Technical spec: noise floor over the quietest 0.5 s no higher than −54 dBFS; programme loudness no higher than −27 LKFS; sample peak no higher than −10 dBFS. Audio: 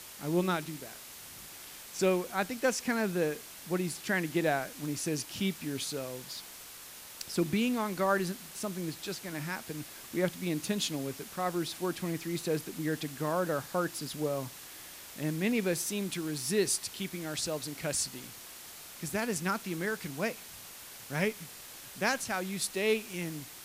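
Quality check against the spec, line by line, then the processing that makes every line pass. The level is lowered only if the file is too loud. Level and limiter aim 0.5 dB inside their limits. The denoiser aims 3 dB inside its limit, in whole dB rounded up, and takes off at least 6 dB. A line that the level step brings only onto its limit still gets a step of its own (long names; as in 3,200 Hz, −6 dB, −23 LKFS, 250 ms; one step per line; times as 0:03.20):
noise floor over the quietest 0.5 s −48 dBFS: out of spec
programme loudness −33.0 LKFS: in spec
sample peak −15.0 dBFS: in spec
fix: broadband denoise 9 dB, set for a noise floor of −48 dBFS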